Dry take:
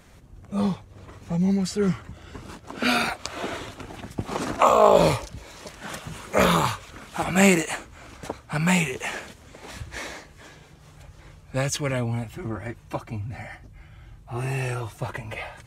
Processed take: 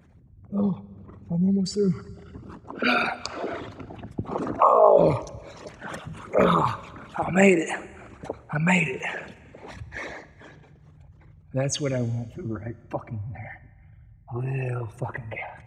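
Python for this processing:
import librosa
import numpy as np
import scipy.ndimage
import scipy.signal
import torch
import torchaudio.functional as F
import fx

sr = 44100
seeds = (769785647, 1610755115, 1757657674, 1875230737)

y = fx.envelope_sharpen(x, sr, power=2.0)
y = scipy.signal.sosfilt(scipy.signal.butter(2, 77.0, 'highpass', fs=sr, output='sos'), y)
y = fx.rev_schroeder(y, sr, rt60_s=1.6, comb_ms=25, drr_db=17.5)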